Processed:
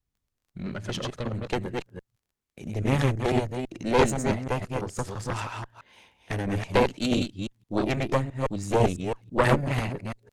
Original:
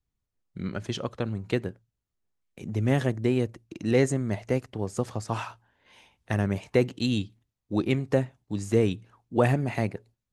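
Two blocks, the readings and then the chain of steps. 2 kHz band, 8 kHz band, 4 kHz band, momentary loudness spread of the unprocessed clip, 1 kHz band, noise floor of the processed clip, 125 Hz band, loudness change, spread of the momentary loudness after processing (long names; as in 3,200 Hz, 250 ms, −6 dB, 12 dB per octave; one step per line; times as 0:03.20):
+3.5 dB, +3.5 dB, +3.5 dB, 11 LU, +7.0 dB, −83 dBFS, −0.5 dB, +0.5 dB, 13 LU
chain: delay that plays each chunk backwards 166 ms, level −3 dB
surface crackle 22 per second −56 dBFS
harmonic generator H 4 −7 dB, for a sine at −7 dBFS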